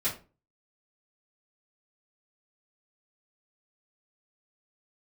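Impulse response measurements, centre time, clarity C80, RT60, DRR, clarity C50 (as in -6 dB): 22 ms, 16.0 dB, 0.35 s, -10.5 dB, 9.5 dB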